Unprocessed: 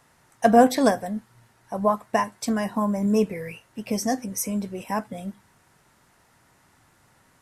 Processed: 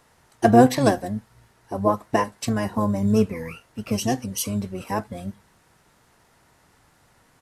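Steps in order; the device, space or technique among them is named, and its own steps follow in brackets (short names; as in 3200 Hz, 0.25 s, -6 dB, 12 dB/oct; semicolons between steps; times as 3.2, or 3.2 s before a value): octave pedal (harmoniser -12 st -5 dB)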